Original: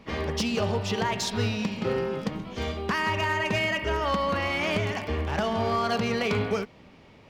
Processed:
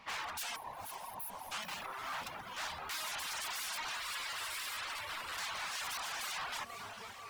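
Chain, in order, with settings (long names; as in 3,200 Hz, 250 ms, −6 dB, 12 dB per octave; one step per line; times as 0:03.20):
feedback echo with a low-pass in the loop 488 ms, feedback 63%, low-pass 2,100 Hz, level −16.5 dB
0:01.54–0:02.25: compressor whose output falls as the input rises −31 dBFS, ratio −1
wave folding −33 dBFS
0:00.56–0:01.52: time-frequency box erased 1,100–9,500 Hz
0:03.97–0:05.38: thirty-one-band graphic EQ 200 Hz −11 dB, 800 Hz −7 dB, 6,300 Hz −6 dB
feedback delay with all-pass diffusion 499 ms, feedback 57%, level −10 dB
reverb reduction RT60 0.89 s
low shelf with overshoot 610 Hz −13.5 dB, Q 1.5
regular buffer underruns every 0.11 s, samples 512, repeat, from 0:01.00
level −1 dB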